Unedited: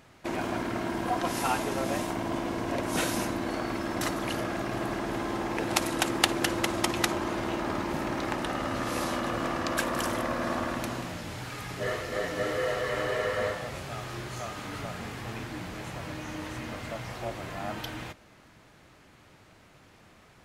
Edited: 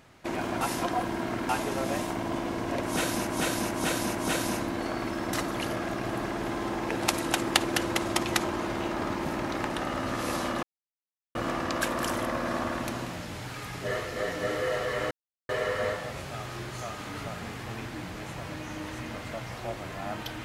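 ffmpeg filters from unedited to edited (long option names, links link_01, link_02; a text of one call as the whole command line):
ffmpeg -i in.wav -filter_complex "[0:a]asplit=8[link_01][link_02][link_03][link_04][link_05][link_06][link_07][link_08];[link_01]atrim=end=0.612[link_09];[link_02]atrim=start=0.608:end=1.492,asetpts=PTS-STARTPTS,areverse[link_10];[link_03]atrim=start=1.488:end=3.272[link_11];[link_04]atrim=start=2.828:end=3.272[link_12];[link_05]atrim=start=2.828:end=3.272[link_13];[link_06]atrim=start=2.828:end=9.31,asetpts=PTS-STARTPTS,afade=type=out:start_time=6.478:duration=0.004:curve=hsin,apad=pad_dur=0.72[link_14];[link_07]atrim=start=9.31:end=13.07,asetpts=PTS-STARTPTS,afade=type=in:duration=0.004:curve=hsin,afade=type=out:start_time=3.756:duration=0.004:curve=hsin,apad=pad_dur=0.38[link_15];[link_08]atrim=start=13.07,asetpts=PTS-STARTPTS,afade=type=in:duration=0.004:curve=hsin[link_16];[link_09][link_10]acrossfade=duration=0.004:curve1=hsin:curve2=hsin[link_17];[link_17][link_11]acrossfade=duration=0.004:curve1=hsin:curve2=hsin[link_18];[link_18][link_12]acrossfade=duration=0.004:curve1=hsin:curve2=hsin[link_19];[link_19][link_13]acrossfade=duration=0.004:curve1=hsin:curve2=hsin[link_20];[link_14][link_15][link_16]concat=n=3:v=0:a=1[link_21];[link_20][link_21]acrossfade=duration=0.004:curve1=hsin:curve2=hsin" out.wav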